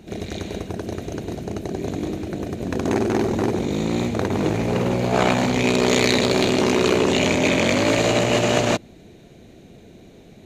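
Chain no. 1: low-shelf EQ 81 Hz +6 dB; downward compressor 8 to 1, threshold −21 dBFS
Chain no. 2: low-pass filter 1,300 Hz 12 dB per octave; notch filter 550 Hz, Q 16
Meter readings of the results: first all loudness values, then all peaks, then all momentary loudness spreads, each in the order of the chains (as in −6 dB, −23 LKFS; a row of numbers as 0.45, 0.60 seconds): −26.5, −22.5 LKFS; −9.5, −6.0 dBFS; 21, 11 LU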